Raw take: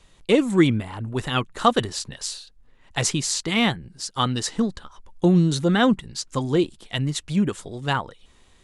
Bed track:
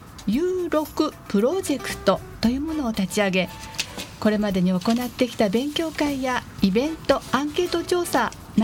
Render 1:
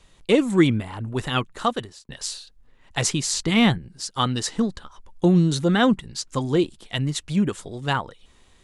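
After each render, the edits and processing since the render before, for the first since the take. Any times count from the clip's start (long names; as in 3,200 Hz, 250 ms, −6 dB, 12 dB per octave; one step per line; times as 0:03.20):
0:01.37–0:02.09: fade out
0:03.33–0:03.78: low-shelf EQ 230 Hz +9 dB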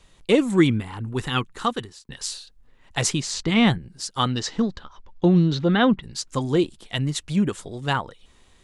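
0:00.60–0:02.32: parametric band 620 Hz −11.5 dB 0.27 octaves
0:03.20–0:03.67: high-frequency loss of the air 67 metres
0:04.31–0:06.02: low-pass filter 6,800 Hz → 4,000 Hz 24 dB per octave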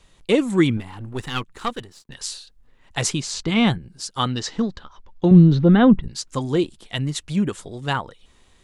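0:00.77–0:02.15: gain on one half-wave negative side −7 dB
0:03.08–0:04.09: notch filter 1,900 Hz
0:05.31–0:06.08: spectral tilt −3 dB per octave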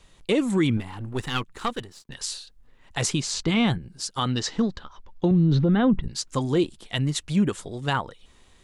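brickwall limiter −13 dBFS, peak gain reduction 10.5 dB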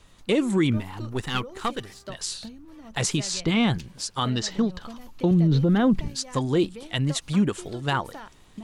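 mix in bed track −20.5 dB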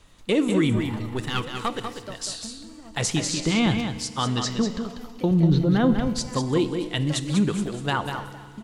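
on a send: single-tap delay 194 ms −7 dB
on the sum: feedback delay network reverb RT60 2.1 s, low-frequency decay 1.1×, high-frequency decay 0.85×, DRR 12 dB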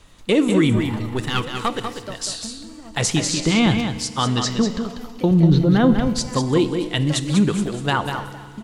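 level +4.5 dB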